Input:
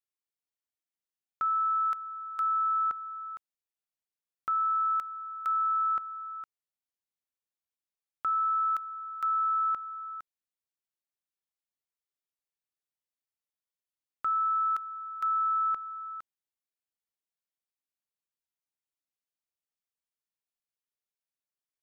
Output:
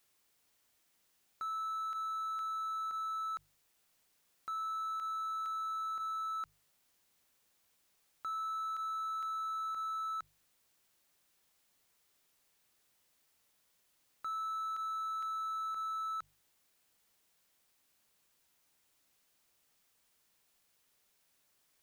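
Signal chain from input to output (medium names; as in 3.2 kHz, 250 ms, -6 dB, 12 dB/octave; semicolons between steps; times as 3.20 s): hum notches 50/100/150 Hz; power-law waveshaper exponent 0.7; peak limiter -35.5 dBFS, peak gain reduction 11 dB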